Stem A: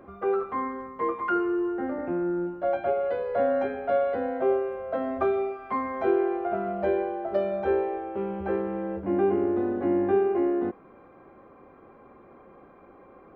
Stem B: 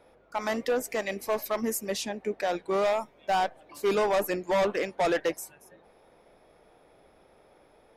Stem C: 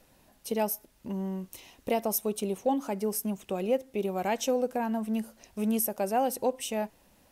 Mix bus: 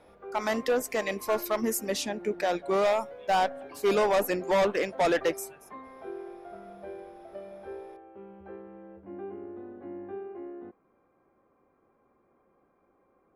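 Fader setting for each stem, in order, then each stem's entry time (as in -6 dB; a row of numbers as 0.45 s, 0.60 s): -16.5 dB, +1.0 dB, mute; 0.00 s, 0.00 s, mute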